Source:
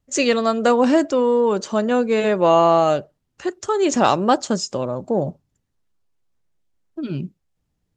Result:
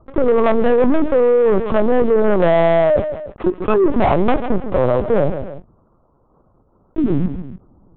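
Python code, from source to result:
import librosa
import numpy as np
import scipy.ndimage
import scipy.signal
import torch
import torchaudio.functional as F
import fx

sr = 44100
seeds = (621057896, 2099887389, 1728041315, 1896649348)

y = scipy.signal.sosfilt(scipy.signal.butter(12, 1300.0, 'lowpass', fs=sr, output='sos'), x)
y = fx.env_lowpass_down(y, sr, base_hz=750.0, full_db=-12.0)
y = scipy.signal.sosfilt(scipy.signal.butter(2, 110.0, 'highpass', fs=sr, output='sos'), y)
y = fx.leveller(y, sr, passes=3)
y = fx.echo_feedback(y, sr, ms=147, feedback_pct=23, wet_db=-18.0)
y = fx.lpc_vocoder(y, sr, seeds[0], excitation='pitch_kept', order=10)
y = fx.env_flatten(y, sr, amount_pct=50)
y = F.gain(torch.from_numpy(y), -3.5).numpy()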